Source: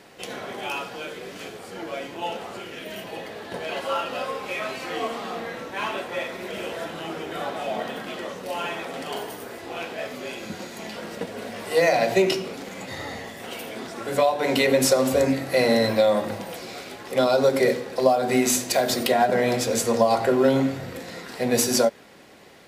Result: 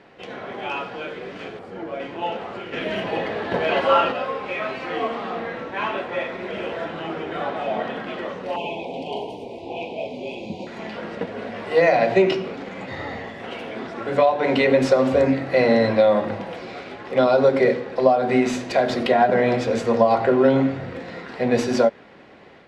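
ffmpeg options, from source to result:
ffmpeg -i in.wav -filter_complex "[0:a]asettb=1/sr,asplit=3[link_01][link_02][link_03];[link_01]atrim=end=1.594[link_04];[link_02]atrim=start=1.59:end=2,asetpts=PTS-STARTPTS,afade=type=in:duration=0.004:curve=qsin,afade=type=out:start_time=0.406:duration=0.004:curve=qsin,equalizer=frequency=3400:width=0.34:gain=-7[link_05];[link_03]atrim=start=1.996[link_06];[link_04][link_05]acrossfade=duration=0.004:curve1=hsin:curve2=qsin[link_07];[link_07][link_06]acrossfade=duration=0.004:curve1=qsin:curve2=hsin,asplit=3[link_08][link_09][link_10];[link_08]afade=type=out:start_time=2.72:duration=0.02[link_11];[link_09]acontrast=76,afade=type=in:start_time=2.72:duration=0.02,afade=type=out:start_time=4.11:duration=0.02[link_12];[link_10]afade=type=in:start_time=4.11:duration=0.02[link_13];[link_11][link_12][link_13]amix=inputs=3:normalize=0,asettb=1/sr,asplit=3[link_14][link_15][link_16];[link_14]atrim=end=8.564[link_17];[link_15]atrim=start=8.56:end=10.67,asetpts=PTS-STARTPTS,afade=type=in:duration=0.004:curve=qsin,afade=type=out:start_time=2.106:duration=0.004:curve=qsin,asuperstop=centerf=1500:order=12:qfactor=1.1[link_18];[link_16]atrim=start=10.666[link_19];[link_17][link_18]acrossfade=duration=0.004:curve1=hsin:curve2=qsin[link_20];[link_20][link_19]acrossfade=duration=0.004:curve1=qsin:curve2=hsin,dynaudnorm=framelen=370:gausssize=3:maxgain=3.5dB,lowpass=2700" out.wav

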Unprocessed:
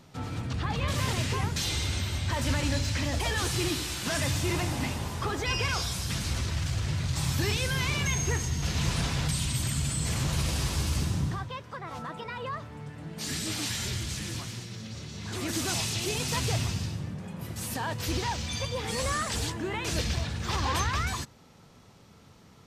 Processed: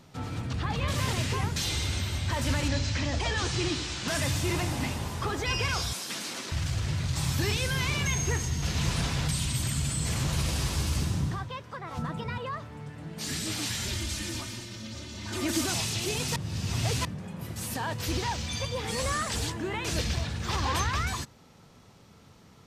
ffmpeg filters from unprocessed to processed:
ffmpeg -i in.wav -filter_complex "[0:a]asettb=1/sr,asplit=3[link_01][link_02][link_03];[link_01]atrim=end=2.684[link_04];[link_02]atrim=start=2.68:end=4.08,asetpts=PTS-STARTPTS,afade=type=in:duration=0.004:curve=qsin,afade=type=out:start_time=1.396:duration=0.004:curve=qsin,lowpass=frequency=7200:width=0.5412,lowpass=frequency=7200:width=1.3066[link_05];[link_03]atrim=start=4.076[link_06];[link_04][link_05]acrossfade=duration=0.004:curve1=hsin:curve2=qsin[link_07];[link_07][link_06]acrossfade=duration=0.004:curve1=qsin:curve2=hsin,asettb=1/sr,asplit=3[link_08][link_09][link_10];[link_08]atrim=end=5.934[link_11];[link_09]atrim=start=5.93:end=6.52,asetpts=PTS-STARTPTS,afade=type=in:duration=0.004:curve=qsin,afade=type=out:start_time=0.586:duration=0.004:curve=qsin,highpass=frequency=240:width=0.5412,highpass=frequency=240:width=1.3066[link_12];[link_10]atrim=start=6.516[link_13];[link_11][link_12]acrossfade=duration=0.004:curve1=hsin:curve2=qsin[link_14];[link_14][link_13]acrossfade=duration=0.004:curve1=qsin:curve2=hsin,asettb=1/sr,asplit=3[link_15][link_16][link_17];[link_15]atrim=end=11.974[link_18];[link_16]atrim=start=11.97:end=12.38,asetpts=PTS-STARTPTS,afade=type=in:duration=0.004:curve=qsin,afade=type=out:start_time=0.406:duration=0.004:curve=qsin,bass=frequency=250:gain=12,treble=frequency=4000:gain=2[link_19];[link_17]atrim=start=12.376[link_20];[link_18][link_19]acrossfade=duration=0.004:curve1=hsin:curve2=qsin[link_21];[link_21][link_20]acrossfade=duration=0.004:curve1=qsin:curve2=hsin,asettb=1/sr,asplit=3[link_22][link_23][link_24];[link_22]atrim=end=13.884[link_25];[link_23]atrim=start=13.88:end=15.66,asetpts=PTS-STARTPTS,afade=type=in:duration=0.004:curve=qsin,afade=type=out:start_time=1.776:duration=0.004:curve=qsin,aecho=1:1:3.3:0.75,atrim=end_sample=78498[link_26];[link_24]atrim=start=15.656[link_27];[link_25][link_26]acrossfade=duration=0.004:curve1=hsin:curve2=qsin[link_28];[link_28][link_27]acrossfade=duration=0.004:curve1=qsin:curve2=hsin,asplit=3[link_29][link_30][link_31];[link_29]atrim=end=16.362[link_32];[link_30]atrim=start=16.358:end=17.052,asetpts=PTS-STARTPTS,areverse[link_33];[link_31]atrim=start=17.048[link_34];[link_32][link_33]acrossfade=duration=0.004:curve1=hsin:curve2=hsin[link_35];[link_35][link_34]acrossfade=duration=0.004:curve1=hsin:curve2=hsin" out.wav

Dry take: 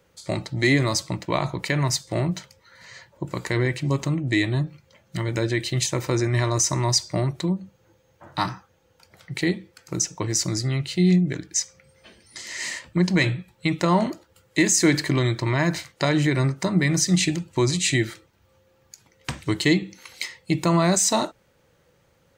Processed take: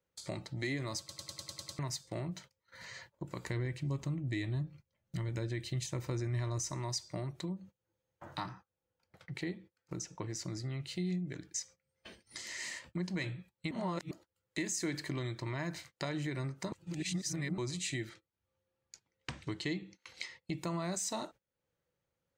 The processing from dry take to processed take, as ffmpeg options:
ffmpeg -i in.wav -filter_complex "[0:a]asettb=1/sr,asplit=3[link_01][link_02][link_03];[link_01]atrim=end=3.444[link_04];[link_02]atrim=start=3.44:end=6.71,asetpts=PTS-STARTPTS,afade=type=in:duration=0.004:curve=qsin,afade=type=out:start_time=3.266:duration=0.004:curve=qsin,lowshelf=frequency=150:gain=11.5[link_05];[link_03]atrim=start=6.706[link_06];[link_04][link_05]acrossfade=duration=0.004:curve1=hsin:curve2=qsin[link_07];[link_07][link_06]acrossfade=duration=0.004:curve1=qsin:curve2=hsin,asettb=1/sr,asplit=3[link_08][link_09][link_10];[link_08]atrim=end=8.404[link_11];[link_09]atrim=start=8.4:end=10.8,asetpts=PTS-STARTPTS,afade=type=in:duration=0.004:curve=qsin,afade=type=out:start_time=2.396:duration=0.004:curve=qsin,highshelf=frequency=4600:gain=-9.5[link_12];[link_10]atrim=start=10.796[link_13];[link_11][link_12]acrossfade=duration=0.004:curve1=hsin:curve2=qsin[link_14];[link_14][link_13]acrossfade=duration=0.004:curve1=qsin:curve2=hsin,asettb=1/sr,asplit=3[link_15][link_16][link_17];[link_15]atrim=end=18.094[link_18];[link_16]atrim=start=18.09:end=20.54,asetpts=PTS-STARTPTS,afade=type=in:duration=0.004:curve=qsin,afade=type=out:start_time=2.446:duration=0.004:curve=qsin,lowpass=6400[link_19];[link_17]atrim=start=20.536[link_20];[link_18][link_19]acrossfade=duration=0.004:curve1=hsin:curve2=qsin[link_21];[link_21][link_20]acrossfade=duration=0.004:curve1=qsin:curve2=hsin,asplit=13[link_22][link_23][link_24][link_25][link_26][link_27][link_28][link_29][link_30][link_31][link_32][link_33][link_34];[link_22]atrim=end=1.092[link_35];[link_23]atrim=start=0.988:end=1.092[link_36];[link_24]atrim=start=0.988:end=1.092[link_37];[link_25]atrim=start=0.988:end=1.092[link_38];[link_26]atrim=start=0.988:end=1.092[link_39];[link_27]atrim=start=0.988:end=1.092[link_40];[link_28]atrim=start=0.988:end=1.092[link_41];[link_29]atrim=start=0.988:end=1.092[link_42];[link_30]atrim=start=1.788:end=13.712[link_43];[link_31]atrim=start=13.708:end=14.112,asetpts=PTS-STARTPTS,areverse[link_44];[link_32]atrim=start=14.108:end=16.722[link_45];[link_33]atrim=start=16.718:end=17.582,asetpts=PTS-STARTPTS,areverse[link_46];[link_34]atrim=start=17.578[link_47];[link_35][link_36]acrossfade=duration=0.004:curve1=hsin:curve2=hsin[link_48];[link_48][link_37]acrossfade=duration=0.004:curve1=hsin:curve2=hsin[link_49];[link_49][link_38]acrossfade=duration=0.004:curve1=hsin:curve2=hsin[link_50];[link_50][link_39]acrossfade=duration=0.004:curve1=hsin:curve2=hsin[link_51];[link_51][link_40]acrossfade=duration=0.004:curve1=hsin:curve2=hsin[link_52];[link_52][link_41]acrossfade=duration=0.004:curve1=hsin:curve2=hsin[link_53];[link_53][link_42]acrossfade=duration=0.004:curve1=hsin:curve2=hsin[link_54];[link_54][link_43]acrossfade=duration=0.004:curve1=hsin:curve2=hsin[link_55];[link_55][link_44]acrossfade=duration=0.004:curve1=hsin:curve2=hsin[link_56];[link_56][link_45]acrossfade=duration=0.004:curve1=hsin:curve2=hsin[link_57];[link_57][link_46]acrossfade=duration=0.004:curve1=hsin:curve2=hsin[link_58];[link_58][link_47]acrossfade=duration=0.004:curve1=hsin:curve2=hsin,acompressor=threshold=-47dB:ratio=2,agate=range=-23dB:threshold=-52dB:ratio=16:detection=peak,volume=-1dB" out.wav

